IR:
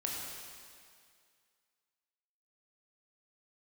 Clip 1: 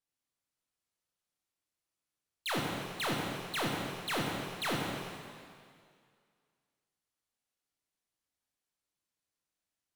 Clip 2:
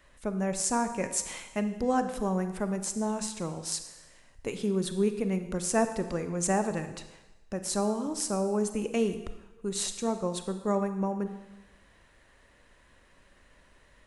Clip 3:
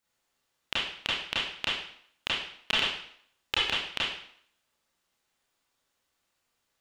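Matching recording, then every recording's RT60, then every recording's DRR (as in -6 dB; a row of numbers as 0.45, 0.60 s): 1; 2.1, 1.1, 0.60 s; -2.5, 8.5, -8.5 dB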